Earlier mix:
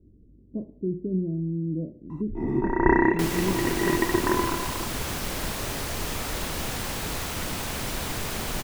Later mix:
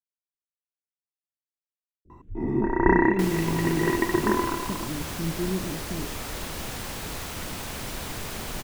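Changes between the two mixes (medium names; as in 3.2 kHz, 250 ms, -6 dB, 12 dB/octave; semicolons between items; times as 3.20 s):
speech: entry +2.05 s; second sound -3.5 dB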